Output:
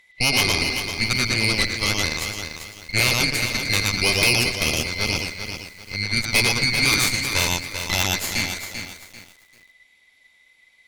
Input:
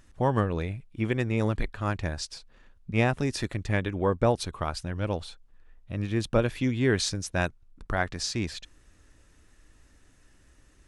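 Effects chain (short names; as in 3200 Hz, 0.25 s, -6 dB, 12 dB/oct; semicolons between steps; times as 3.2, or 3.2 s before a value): band-swap scrambler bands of 2000 Hz; bell 3300 Hz +2 dB 0.39 oct; delay with a stepping band-pass 0.116 s, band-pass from 3600 Hz, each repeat -1.4 oct, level 0 dB; added harmonics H 5 -30 dB, 6 -13 dB, 7 -27 dB, 8 -6 dB, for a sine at -7.5 dBFS; lo-fi delay 0.392 s, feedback 35%, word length 7-bit, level -7.5 dB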